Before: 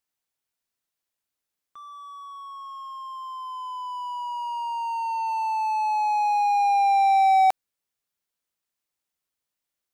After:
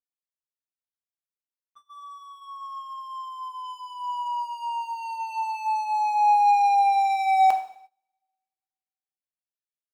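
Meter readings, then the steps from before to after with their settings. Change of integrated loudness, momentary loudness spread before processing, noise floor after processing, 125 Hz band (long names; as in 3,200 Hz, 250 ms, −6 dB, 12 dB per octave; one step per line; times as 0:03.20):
0.0 dB, 20 LU, below −85 dBFS, can't be measured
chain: coupled-rooms reverb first 0.62 s, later 1.9 s, from −23 dB, DRR 4.5 dB
noise gate −47 dBFS, range −19 dB
level −2 dB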